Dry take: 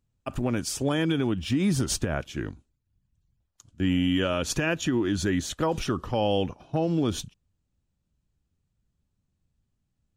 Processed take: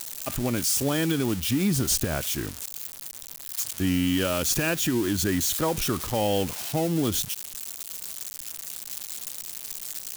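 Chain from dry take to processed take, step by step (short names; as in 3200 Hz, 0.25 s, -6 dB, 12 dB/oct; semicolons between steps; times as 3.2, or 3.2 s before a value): switching spikes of -20.5 dBFS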